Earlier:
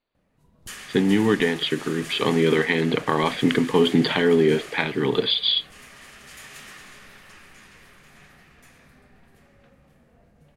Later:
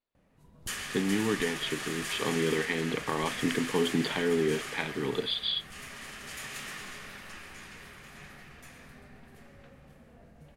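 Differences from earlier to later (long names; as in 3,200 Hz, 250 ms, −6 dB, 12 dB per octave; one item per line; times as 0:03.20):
speech −9.5 dB
reverb: on, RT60 1.2 s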